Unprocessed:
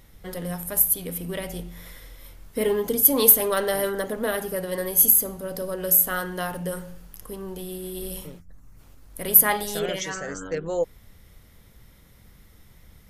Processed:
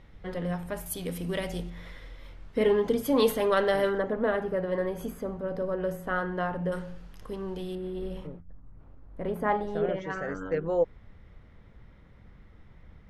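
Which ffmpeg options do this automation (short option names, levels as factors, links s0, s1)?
-af "asetnsamples=n=441:p=0,asendcmd='0.86 lowpass f 6200;1.7 lowpass f 3300;3.98 lowpass f 1700;6.72 lowpass f 3900;7.75 lowpass f 1800;8.27 lowpass f 1100;10.1 lowpass f 2000',lowpass=2800"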